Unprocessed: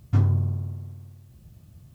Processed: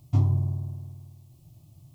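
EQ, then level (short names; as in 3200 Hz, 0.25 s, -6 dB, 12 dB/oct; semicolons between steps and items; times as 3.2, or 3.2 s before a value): fixed phaser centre 310 Hz, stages 8; 0.0 dB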